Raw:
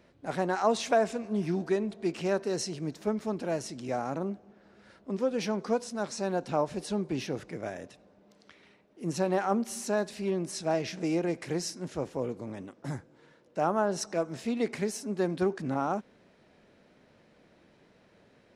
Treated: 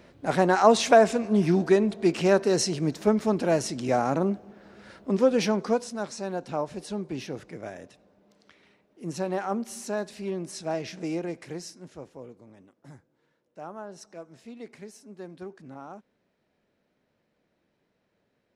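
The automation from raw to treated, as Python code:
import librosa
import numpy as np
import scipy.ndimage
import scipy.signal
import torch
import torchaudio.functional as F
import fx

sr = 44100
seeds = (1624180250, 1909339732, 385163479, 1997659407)

y = fx.gain(x, sr, db=fx.line((5.32, 8.0), (6.22, -1.5), (11.11, -1.5), (12.46, -12.5)))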